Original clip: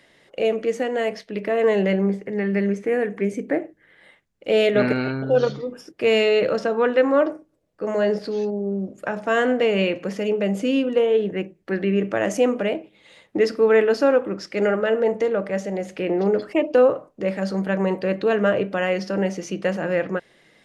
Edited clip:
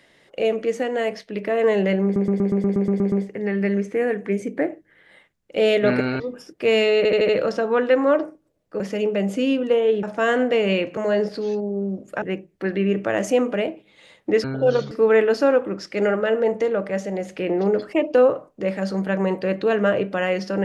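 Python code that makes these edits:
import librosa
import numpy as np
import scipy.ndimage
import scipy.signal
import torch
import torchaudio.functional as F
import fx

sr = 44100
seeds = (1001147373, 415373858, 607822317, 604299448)

y = fx.edit(x, sr, fx.stutter(start_s=2.04, slice_s=0.12, count=10),
    fx.move(start_s=5.12, length_s=0.47, to_s=13.51),
    fx.stutter(start_s=6.36, slice_s=0.08, count=5),
    fx.swap(start_s=7.87, length_s=1.25, other_s=10.06, other_length_s=1.23), tone=tone)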